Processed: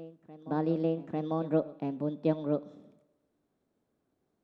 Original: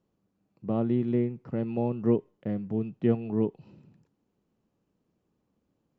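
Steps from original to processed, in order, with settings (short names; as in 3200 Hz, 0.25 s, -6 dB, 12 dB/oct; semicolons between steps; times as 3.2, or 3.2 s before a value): reverse echo 1.144 s -17 dB; Schroeder reverb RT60 1.5 s, combs from 32 ms, DRR 18 dB; speed mistake 33 rpm record played at 45 rpm; gain -3 dB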